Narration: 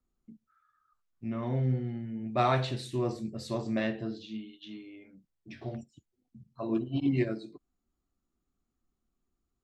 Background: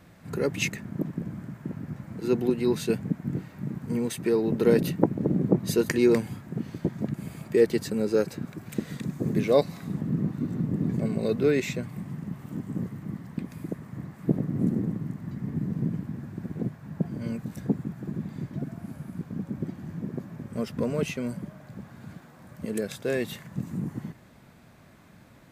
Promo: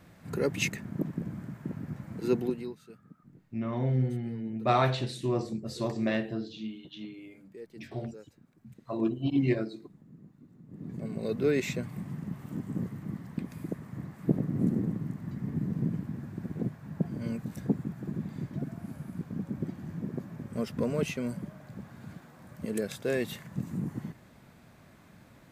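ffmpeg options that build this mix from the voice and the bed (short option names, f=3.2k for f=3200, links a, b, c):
-filter_complex "[0:a]adelay=2300,volume=1.5dB[a];[1:a]volume=21.5dB,afade=t=out:st=2.3:d=0.46:silence=0.0668344,afade=t=in:st=10.65:d=1.04:silence=0.0668344[b];[a][b]amix=inputs=2:normalize=0"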